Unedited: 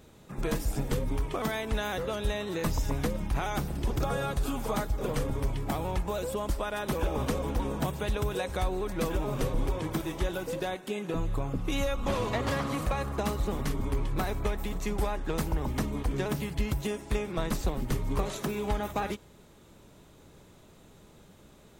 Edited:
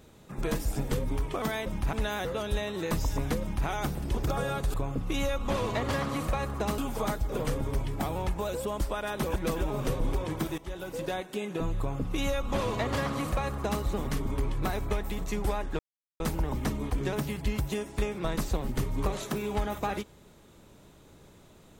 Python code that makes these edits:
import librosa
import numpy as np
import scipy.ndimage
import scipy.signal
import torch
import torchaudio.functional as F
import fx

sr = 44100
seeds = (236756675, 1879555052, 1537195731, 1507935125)

y = fx.edit(x, sr, fx.duplicate(start_s=3.14, length_s=0.27, to_s=1.66),
    fx.cut(start_s=7.05, length_s=1.85),
    fx.fade_in_from(start_s=10.12, length_s=0.49, floor_db=-15.0),
    fx.duplicate(start_s=11.32, length_s=2.04, to_s=4.47),
    fx.insert_silence(at_s=15.33, length_s=0.41), tone=tone)